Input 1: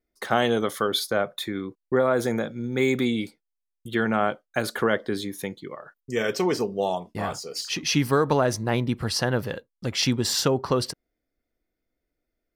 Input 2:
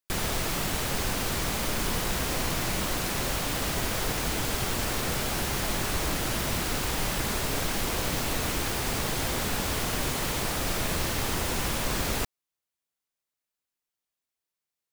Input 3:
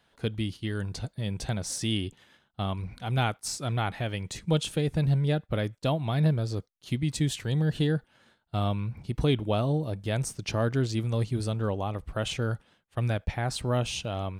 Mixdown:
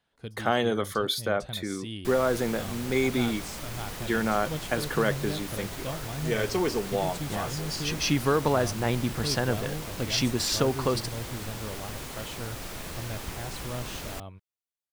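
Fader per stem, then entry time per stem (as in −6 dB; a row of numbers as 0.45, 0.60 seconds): −3.0, −9.5, −9.5 decibels; 0.15, 1.95, 0.00 seconds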